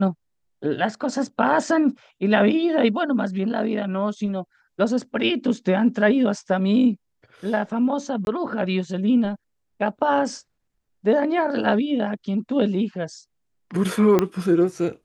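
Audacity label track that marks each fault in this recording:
8.250000	8.270000	drop-out 21 ms
14.190000	14.190000	click −6 dBFS

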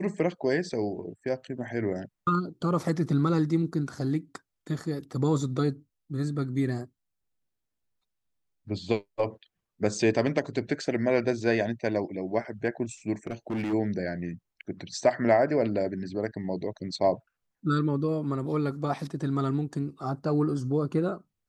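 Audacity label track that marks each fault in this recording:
13.270000	13.740000	clipping −26.5 dBFS

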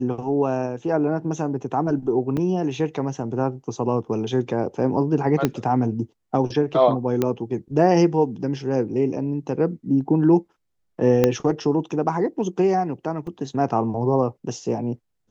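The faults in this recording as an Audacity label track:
2.370000	2.370000	drop-out 4.8 ms
5.450000	5.450000	click −6 dBFS
7.220000	7.220000	click −9 dBFS
11.240000	11.240000	click −4 dBFS
13.270000	13.270000	drop-out 3.5 ms

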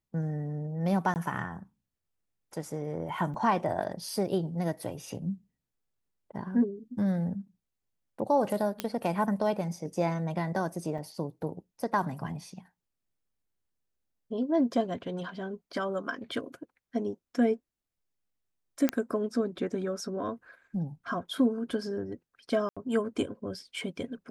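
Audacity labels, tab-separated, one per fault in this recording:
1.140000	1.160000	drop-out 19 ms
3.340000	3.340000	drop-out 4.1 ms
8.800000	8.800000	click −14 dBFS
10.980000	10.990000	drop-out 5.3 ms
18.890000	18.890000	click −11 dBFS
22.690000	22.770000	drop-out 76 ms

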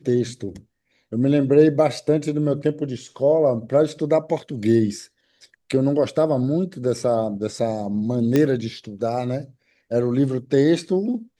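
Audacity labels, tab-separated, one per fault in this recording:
8.360000	8.360000	click −7 dBFS

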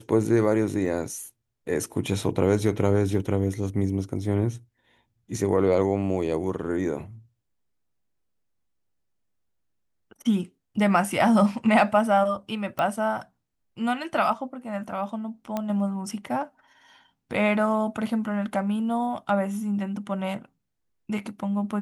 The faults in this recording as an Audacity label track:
0.860000	0.860000	drop-out 3.7 ms
12.790000	12.790000	click −15 dBFS
15.570000	15.570000	click −15 dBFS

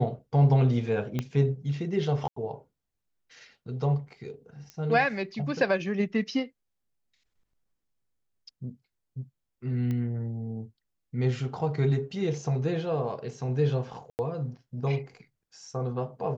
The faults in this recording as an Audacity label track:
1.190000	1.190000	click −16 dBFS
2.280000	2.360000	drop-out 84 ms
4.700000	4.700000	click −26 dBFS
9.910000	9.910000	click −22 dBFS
14.100000	14.190000	drop-out 89 ms

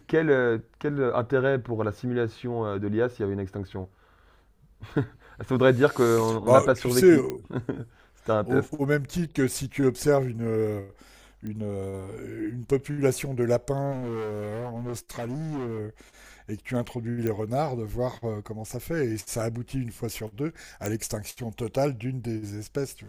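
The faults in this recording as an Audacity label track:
7.300000	7.300000	click −17 dBFS
11.470000	11.470000	click −25 dBFS
13.910000	15.790000	clipping −29 dBFS
17.270000	17.270000	click −16 dBFS
20.860000	20.860000	click

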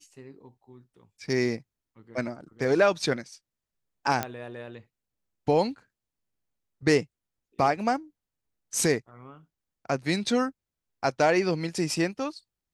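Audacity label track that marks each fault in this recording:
4.230000	4.230000	click −12 dBFS

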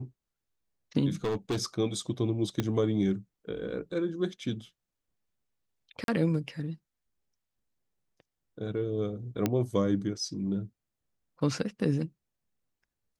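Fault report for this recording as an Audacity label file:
1.240000	1.620000	clipping −26 dBFS
2.600000	2.600000	click −15 dBFS
6.040000	6.080000	drop-out 42 ms
9.460000	9.460000	click −13 dBFS

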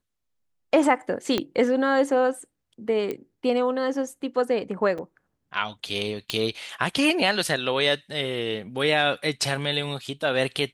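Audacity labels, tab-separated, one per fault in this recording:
1.380000	1.380000	click −10 dBFS
3.110000	3.110000	click −17 dBFS
4.980000	4.990000	drop-out 5.1 ms
6.300000	6.300000	click −11 dBFS

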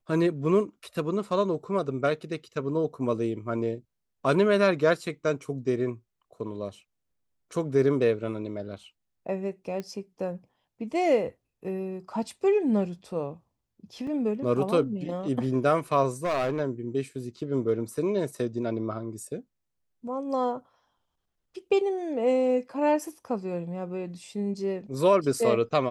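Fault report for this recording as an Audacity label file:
9.800000	9.800000	click −22 dBFS
14.070000	14.070000	drop-out 3.4 ms
16.240000	16.610000	clipping −23 dBFS

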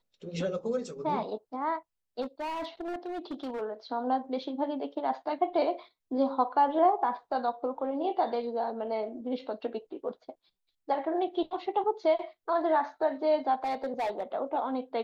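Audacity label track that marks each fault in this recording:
2.210000	3.620000	clipping −31.5 dBFS
13.640000	14.230000	clipping −27 dBFS

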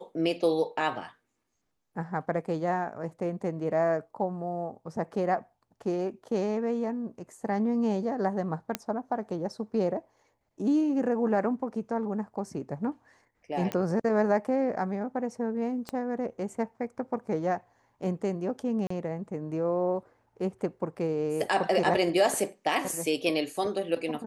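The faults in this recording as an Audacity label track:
8.750000	8.750000	click −12 dBFS
13.720000	13.720000	click −17 dBFS
15.890000	15.890000	click −20 dBFS
18.870000	18.900000	drop-out 34 ms

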